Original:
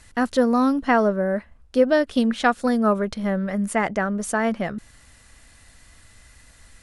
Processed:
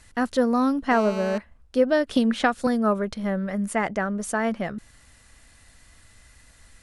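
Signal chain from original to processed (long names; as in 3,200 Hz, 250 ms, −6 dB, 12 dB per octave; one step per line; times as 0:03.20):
0:00.91–0:01.38: phone interference −31 dBFS
0:02.10–0:02.67: multiband upward and downward compressor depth 100%
level −2.5 dB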